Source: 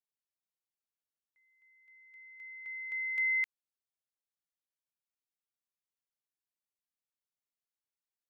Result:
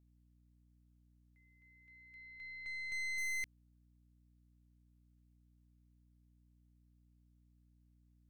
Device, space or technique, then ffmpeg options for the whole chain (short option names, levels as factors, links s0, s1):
valve amplifier with mains hum: -af "aeval=exprs='(tanh(89.1*val(0)+0.6)-tanh(0.6))/89.1':c=same,aeval=exprs='val(0)+0.000355*(sin(2*PI*60*n/s)+sin(2*PI*2*60*n/s)/2+sin(2*PI*3*60*n/s)/3+sin(2*PI*4*60*n/s)/4+sin(2*PI*5*60*n/s)/5)':c=same,volume=1.19"